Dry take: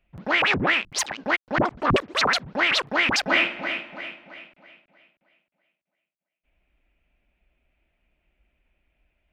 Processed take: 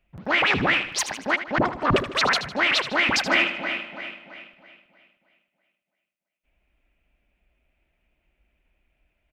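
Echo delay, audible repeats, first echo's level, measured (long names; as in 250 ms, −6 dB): 77 ms, 4, −11.5 dB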